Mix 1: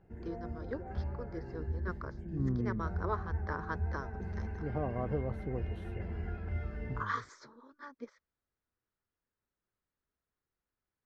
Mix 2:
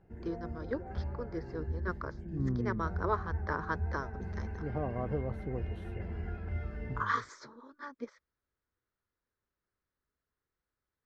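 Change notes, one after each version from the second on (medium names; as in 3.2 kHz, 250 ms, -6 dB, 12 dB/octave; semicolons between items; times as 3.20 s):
first voice +4.0 dB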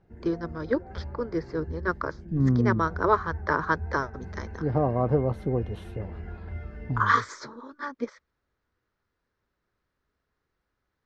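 first voice +10.0 dB; second voice +11.5 dB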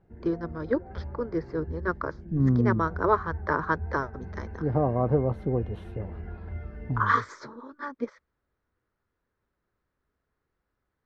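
master: add treble shelf 3 kHz -10 dB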